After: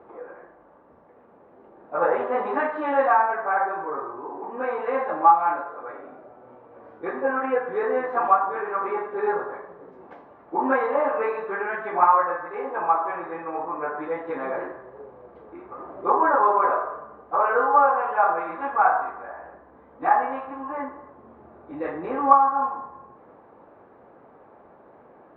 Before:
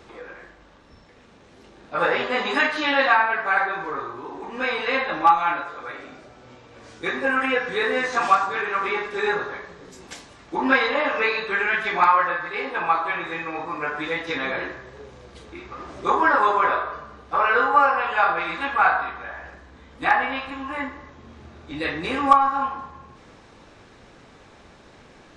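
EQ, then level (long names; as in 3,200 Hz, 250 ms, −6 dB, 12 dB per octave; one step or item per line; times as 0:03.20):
resonant band-pass 760 Hz, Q 0.78
low-pass filter 1,100 Hz 12 dB per octave
+3.5 dB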